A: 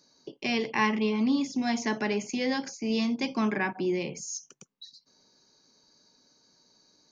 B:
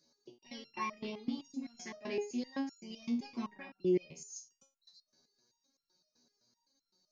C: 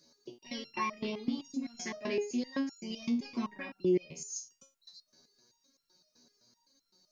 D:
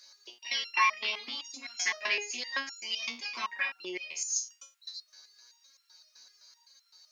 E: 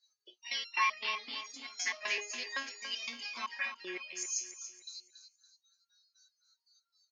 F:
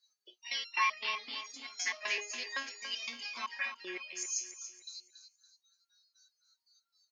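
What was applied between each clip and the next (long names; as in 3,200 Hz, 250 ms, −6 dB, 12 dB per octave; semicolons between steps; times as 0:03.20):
auto-filter notch saw up 8.6 Hz 780–3,100 Hz; step-sequenced resonator 7.8 Hz 80–1,400 Hz; level +1 dB
notch filter 810 Hz, Q 12; in parallel at +3 dB: downward compressor, threshold −42 dBFS, peak gain reduction 15.5 dB
high-pass filter 1,200 Hz 12 dB per octave; parametric band 2,100 Hz +7.5 dB 2.8 octaves; level +6.5 dB
noise reduction from a noise print of the clip's start 24 dB; on a send: repeating echo 282 ms, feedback 37%, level −10.5 dB; on the sum: level −4.5 dB
low-shelf EQ 130 Hz −8 dB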